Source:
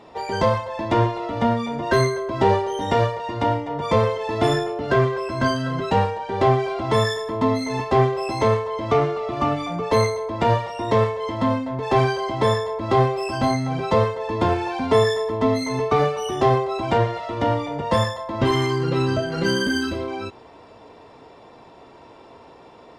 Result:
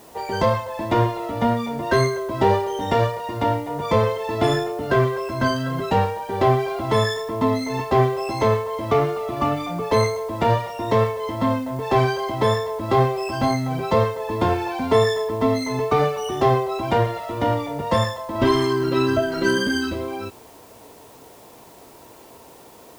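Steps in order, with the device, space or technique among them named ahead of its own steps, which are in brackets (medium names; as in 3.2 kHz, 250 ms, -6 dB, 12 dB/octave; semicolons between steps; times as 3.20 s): 18.35–19.58 s: comb 3.1 ms, depth 68%; plain cassette with noise reduction switched in (tape noise reduction on one side only decoder only; wow and flutter 13 cents; white noise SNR 30 dB)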